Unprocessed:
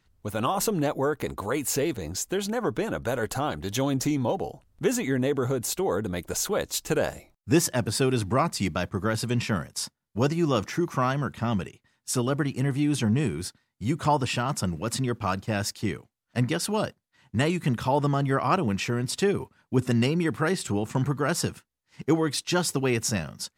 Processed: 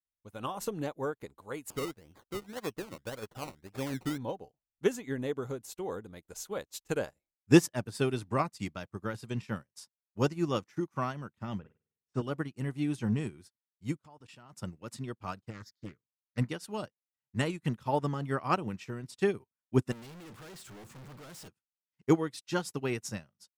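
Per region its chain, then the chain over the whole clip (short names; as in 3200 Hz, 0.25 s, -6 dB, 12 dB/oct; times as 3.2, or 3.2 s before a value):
1.7–4.18 LPF 6200 Hz 24 dB/oct + decimation with a swept rate 21×, swing 60% 1.8 Hz
11.59–12.22 Bessel low-pass 1600 Hz + low shelf 130 Hz +4 dB + flutter echo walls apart 8.7 m, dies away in 0.68 s
13.97–14.53 HPF 67 Hz 6 dB/oct + level quantiser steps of 16 dB
15.5–16.38 fixed phaser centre 2700 Hz, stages 6 + Doppler distortion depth 0.64 ms
19.92–21.48 sample leveller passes 5 + overloaded stage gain 29.5 dB
whole clip: notch 690 Hz, Q 17; upward expander 2.5:1, over -45 dBFS; gain +2.5 dB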